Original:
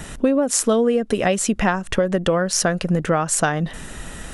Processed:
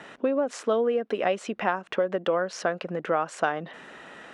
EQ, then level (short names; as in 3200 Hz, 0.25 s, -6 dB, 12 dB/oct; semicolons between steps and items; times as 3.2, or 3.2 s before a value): dynamic EQ 1800 Hz, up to -4 dB, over -39 dBFS, Q 4.6; BPF 370–2700 Hz; -4.0 dB